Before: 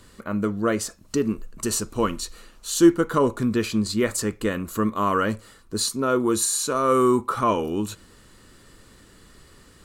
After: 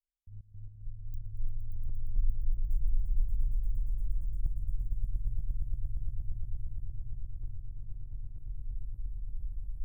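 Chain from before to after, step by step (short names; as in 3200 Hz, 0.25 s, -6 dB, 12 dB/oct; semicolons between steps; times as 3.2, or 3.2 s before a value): Wiener smoothing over 9 samples; treble ducked by the level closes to 380 Hz, closed at -20.5 dBFS; de-esser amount 85%; inverse Chebyshev band-stop 260–3500 Hz, stop band 80 dB; low shelf 350 Hz +11.5 dB; step gate "..x.x.xxxxxx.x" 111 bpm -60 dB; 1.28–1.89 resonator 53 Hz, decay 0.56 s, harmonics odd, mix 80%; swelling echo 0.116 s, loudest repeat 8, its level -5 dB; gain +6.5 dB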